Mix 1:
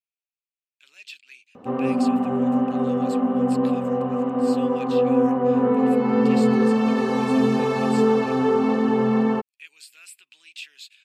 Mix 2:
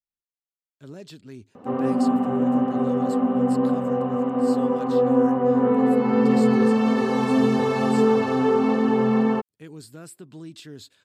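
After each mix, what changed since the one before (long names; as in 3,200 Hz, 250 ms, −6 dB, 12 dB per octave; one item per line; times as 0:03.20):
speech: remove high-pass with resonance 2,500 Hz, resonance Q 6.6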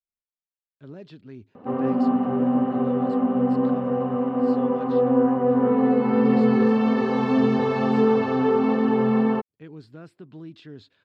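background: remove low-pass filter 3,300 Hz 6 dB per octave
master: add high-frequency loss of the air 260 metres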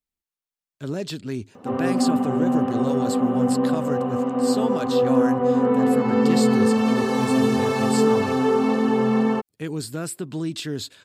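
speech +12.0 dB
master: remove high-frequency loss of the air 260 metres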